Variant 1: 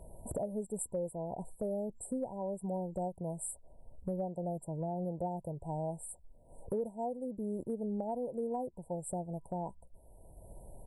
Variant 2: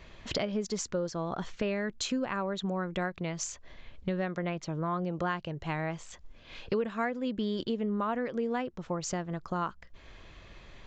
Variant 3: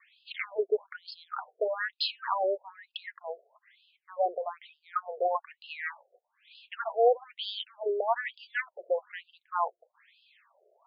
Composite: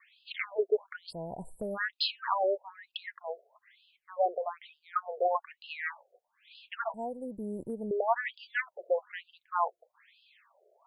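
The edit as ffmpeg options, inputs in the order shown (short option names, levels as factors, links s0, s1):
-filter_complex "[0:a]asplit=2[s0][s1];[2:a]asplit=3[s2][s3][s4];[s2]atrim=end=1.13[s5];[s0]atrim=start=1.09:end=1.78[s6];[s3]atrim=start=1.74:end=6.942[s7];[s1]atrim=start=6.938:end=7.912[s8];[s4]atrim=start=7.908[s9];[s5][s6]acrossfade=d=0.04:c1=tri:c2=tri[s10];[s10][s7]acrossfade=d=0.04:c1=tri:c2=tri[s11];[s11][s8]acrossfade=d=0.004:c1=hsin:c2=hsin[s12];[s12][s9]acrossfade=d=0.004:c1=hsin:c2=hsin"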